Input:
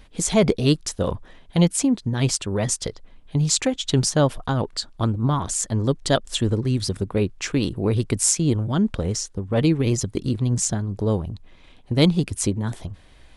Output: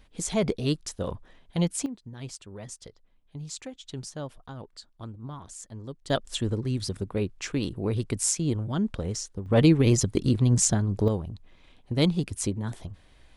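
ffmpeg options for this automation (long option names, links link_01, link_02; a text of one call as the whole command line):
ffmpeg -i in.wav -af "asetnsamples=nb_out_samples=441:pad=0,asendcmd='1.86 volume volume -18dB;6.1 volume volume -6.5dB;9.46 volume volume 0.5dB;11.08 volume volume -6dB',volume=-8dB" out.wav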